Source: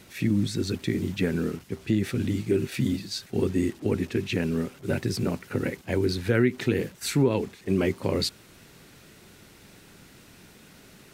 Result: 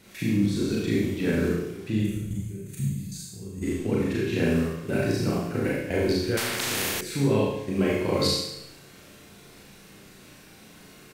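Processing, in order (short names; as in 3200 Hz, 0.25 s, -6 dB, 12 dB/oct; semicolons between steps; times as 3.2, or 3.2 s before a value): 2–3.63 spectral gain 210–6100 Hz -14 dB; level quantiser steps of 14 dB; doubler 47 ms -13.5 dB; on a send: flutter echo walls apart 6.1 m, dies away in 0.42 s; on the sum: Schroeder reverb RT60 0.8 s, combs from 29 ms, DRR -3.5 dB; 6.37–7.01 spectral compressor 4:1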